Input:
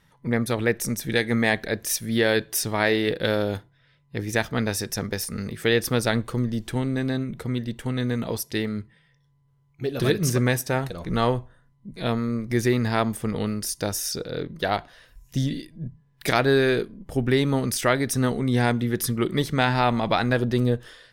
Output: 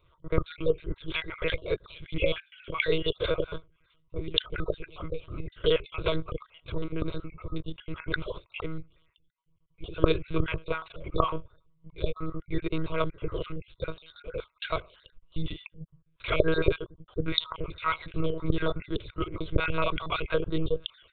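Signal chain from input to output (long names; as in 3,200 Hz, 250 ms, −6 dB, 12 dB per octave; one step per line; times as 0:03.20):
time-frequency cells dropped at random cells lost 45%
one-pitch LPC vocoder at 8 kHz 160 Hz
phaser with its sweep stopped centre 1,200 Hz, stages 8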